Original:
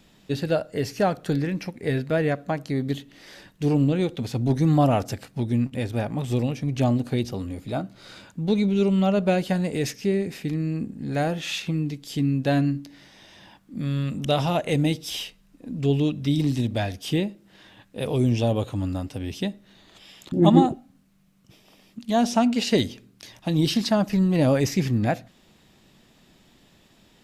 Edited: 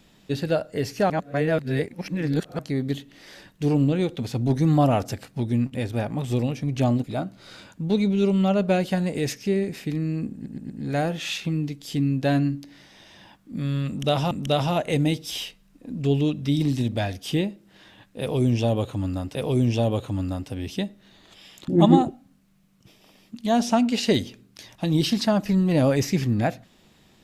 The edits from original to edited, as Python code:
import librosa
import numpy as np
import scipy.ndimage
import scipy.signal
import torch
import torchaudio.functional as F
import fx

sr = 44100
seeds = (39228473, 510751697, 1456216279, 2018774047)

y = fx.edit(x, sr, fx.reverse_span(start_s=1.1, length_s=1.49),
    fx.cut(start_s=7.04, length_s=0.58),
    fx.stutter(start_s=10.92, slice_s=0.12, count=4),
    fx.repeat(start_s=14.1, length_s=0.43, count=2),
    fx.repeat(start_s=17.99, length_s=1.15, count=2), tone=tone)